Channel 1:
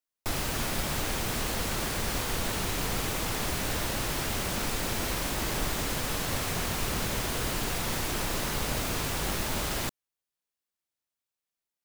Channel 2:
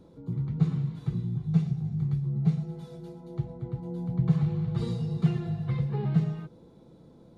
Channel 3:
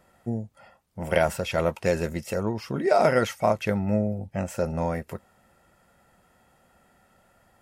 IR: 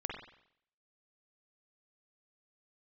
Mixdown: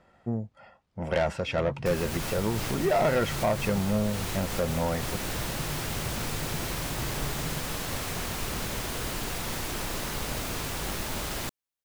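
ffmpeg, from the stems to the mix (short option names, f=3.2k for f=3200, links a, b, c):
-filter_complex "[0:a]adelay=1600,volume=-2dB[a];[1:a]asubboost=boost=10:cutoff=61,acompressor=threshold=-28dB:ratio=6,adelay=1300,volume=-6.5dB[b];[2:a]lowpass=4.5k,asoftclip=type=tanh:threshold=-19dB,volume=0dB,asplit=2[c][d];[d]apad=whole_len=593081[e];[a][e]sidechaincompress=threshold=-28dB:ratio=8:attack=16:release=214[f];[f][b][c]amix=inputs=3:normalize=0"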